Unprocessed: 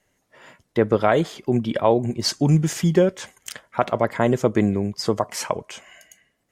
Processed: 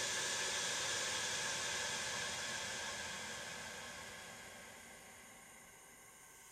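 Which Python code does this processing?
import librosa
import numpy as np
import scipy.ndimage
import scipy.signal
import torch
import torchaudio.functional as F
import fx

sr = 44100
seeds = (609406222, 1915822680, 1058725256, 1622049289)

y = fx.paulstretch(x, sr, seeds[0], factor=36.0, window_s=0.25, from_s=3.2)
y = F.gain(torch.from_numpy(y), -3.5).numpy()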